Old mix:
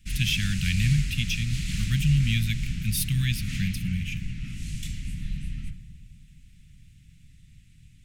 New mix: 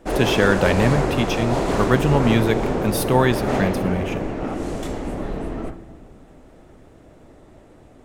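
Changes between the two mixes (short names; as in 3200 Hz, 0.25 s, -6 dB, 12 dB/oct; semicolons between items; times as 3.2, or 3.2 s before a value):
speech: send on; master: remove elliptic band-stop 160–2400 Hz, stop band 60 dB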